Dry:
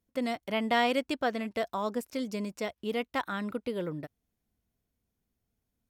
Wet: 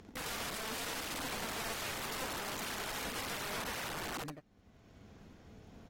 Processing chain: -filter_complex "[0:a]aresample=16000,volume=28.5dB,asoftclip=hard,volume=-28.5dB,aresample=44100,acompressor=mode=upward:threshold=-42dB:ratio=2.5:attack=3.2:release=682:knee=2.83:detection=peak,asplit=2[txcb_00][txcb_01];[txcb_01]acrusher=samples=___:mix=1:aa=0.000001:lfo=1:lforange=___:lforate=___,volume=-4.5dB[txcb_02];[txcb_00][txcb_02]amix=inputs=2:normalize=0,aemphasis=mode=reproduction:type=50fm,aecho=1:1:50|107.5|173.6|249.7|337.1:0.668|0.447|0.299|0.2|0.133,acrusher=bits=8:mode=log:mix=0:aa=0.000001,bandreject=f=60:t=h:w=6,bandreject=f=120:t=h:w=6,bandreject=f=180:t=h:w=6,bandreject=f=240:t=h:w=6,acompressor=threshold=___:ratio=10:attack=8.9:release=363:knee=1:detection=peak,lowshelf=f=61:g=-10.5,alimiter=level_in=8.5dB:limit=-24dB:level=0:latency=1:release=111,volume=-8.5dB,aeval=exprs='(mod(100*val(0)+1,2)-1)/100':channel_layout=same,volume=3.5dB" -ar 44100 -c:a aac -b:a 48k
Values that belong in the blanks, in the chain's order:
34, 34, 0.47, -29dB